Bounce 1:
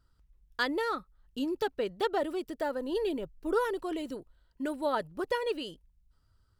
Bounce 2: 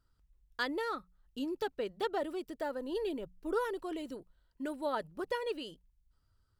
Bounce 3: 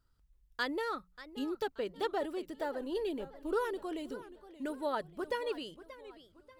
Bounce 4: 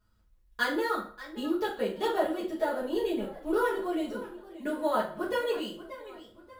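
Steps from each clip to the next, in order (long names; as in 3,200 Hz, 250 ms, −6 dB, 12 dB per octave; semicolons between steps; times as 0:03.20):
mains-hum notches 60/120/180 Hz; level −4.5 dB
feedback echo with a swinging delay time 582 ms, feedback 40%, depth 169 cents, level −15.5 dB
in parallel at −8 dB: sample-rate reduction 11,000 Hz, jitter 0%; on the sum: convolution reverb RT60 0.45 s, pre-delay 5 ms, DRR −6.5 dB; level −3.5 dB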